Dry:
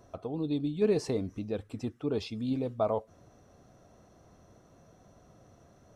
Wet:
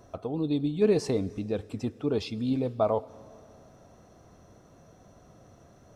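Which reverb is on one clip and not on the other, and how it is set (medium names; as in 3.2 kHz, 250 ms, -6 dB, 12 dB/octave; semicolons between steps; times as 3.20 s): plate-style reverb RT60 2.9 s, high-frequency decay 1×, DRR 19.5 dB; trim +3.5 dB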